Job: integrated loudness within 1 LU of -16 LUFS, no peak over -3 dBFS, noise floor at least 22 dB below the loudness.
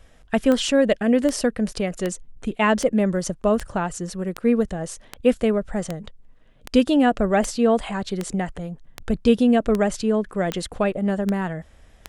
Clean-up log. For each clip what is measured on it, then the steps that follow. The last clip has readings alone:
clicks found 16; loudness -22.0 LUFS; peak level -5.0 dBFS; loudness target -16.0 LUFS
-> de-click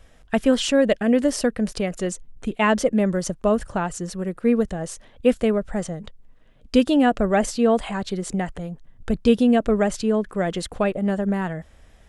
clicks found 0; loudness -22.0 LUFS; peak level -5.0 dBFS; loudness target -16.0 LUFS
-> trim +6 dB; peak limiter -3 dBFS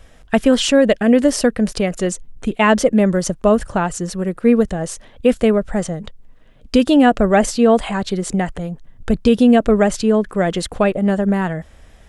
loudness -16.5 LUFS; peak level -3.0 dBFS; noise floor -46 dBFS

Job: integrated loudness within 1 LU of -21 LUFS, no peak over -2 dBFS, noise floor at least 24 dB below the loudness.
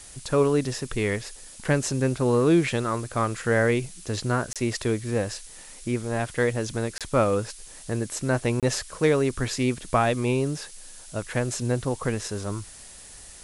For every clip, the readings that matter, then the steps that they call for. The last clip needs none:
dropouts 3; longest dropout 27 ms; noise floor -45 dBFS; noise floor target -50 dBFS; loudness -26.0 LUFS; peak level -8.5 dBFS; loudness target -21.0 LUFS
-> interpolate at 4.53/6.98/8.60 s, 27 ms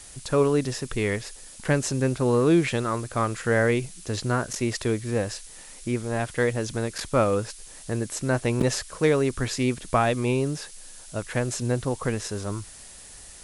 dropouts 0; noise floor -45 dBFS; noise floor target -50 dBFS
-> noise print and reduce 6 dB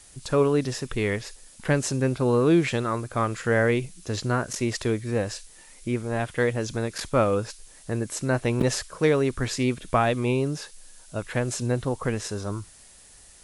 noise floor -51 dBFS; loudness -26.0 LUFS; peak level -8.0 dBFS; loudness target -21.0 LUFS
-> trim +5 dB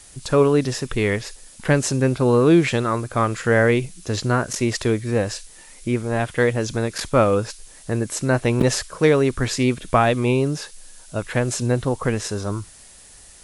loudness -21.0 LUFS; peak level -3.0 dBFS; noise floor -46 dBFS

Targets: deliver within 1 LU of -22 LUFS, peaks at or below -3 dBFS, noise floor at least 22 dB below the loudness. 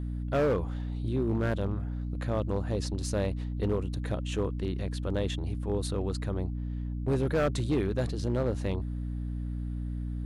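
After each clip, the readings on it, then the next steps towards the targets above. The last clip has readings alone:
clipped samples 1.7%; clipping level -21.5 dBFS; hum 60 Hz; highest harmonic 300 Hz; hum level -31 dBFS; loudness -31.5 LUFS; peak level -21.5 dBFS; loudness target -22.0 LUFS
-> clip repair -21.5 dBFS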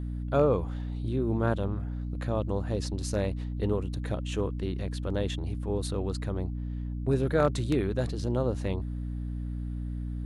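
clipped samples 0.0%; hum 60 Hz; highest harmonic 300 Hz; hum level -31 dBFS
-> hum notches 60/120/180/240/300 Hz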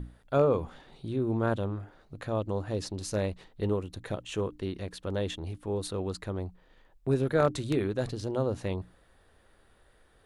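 hum not found; loudness -31.5 LUFS; peak level -11.5 dBFS; loudness target -22.0 LUFS
-> trim +9.5 dB; peak limiter -3 dBFS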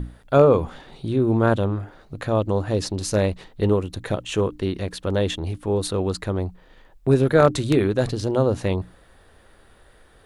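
loudness -22.0 LUFS; peak level -3.0 dBFS; noise floor -53 dBFS

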